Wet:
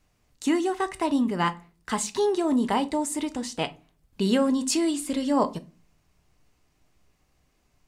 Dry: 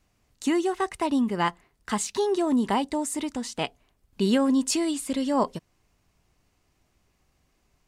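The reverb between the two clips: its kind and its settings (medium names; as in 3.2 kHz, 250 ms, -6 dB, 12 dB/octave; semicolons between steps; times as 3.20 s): simulated room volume 170 m³, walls furnished, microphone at 0.47 m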